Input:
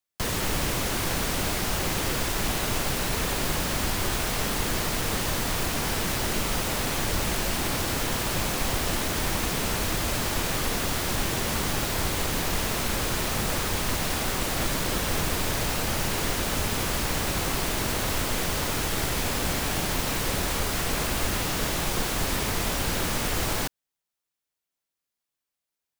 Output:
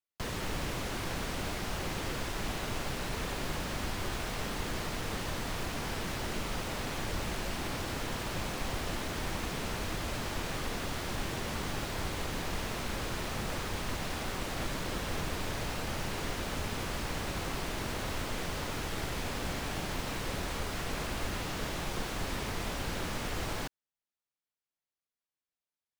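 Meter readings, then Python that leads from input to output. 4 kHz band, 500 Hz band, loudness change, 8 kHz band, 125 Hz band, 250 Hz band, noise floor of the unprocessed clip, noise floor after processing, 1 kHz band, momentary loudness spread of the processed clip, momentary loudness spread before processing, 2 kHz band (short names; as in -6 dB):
-9.5 dB, -7.5 dB, -9.5 dB, -13.0 dB, -7.5 dB, -7.5 dB, under -85 dBFS, under -85 dBFS, -7.5 dB, 0 LU, 0 LU, -8.0 dB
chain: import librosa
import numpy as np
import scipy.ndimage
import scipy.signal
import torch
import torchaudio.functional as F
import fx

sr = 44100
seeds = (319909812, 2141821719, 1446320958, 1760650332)

y = fx.high_shelf(x, sr, hz=7300.0, db=-11.0)
y = F.gain(torch.from_numpy(y), -7.5).numpy()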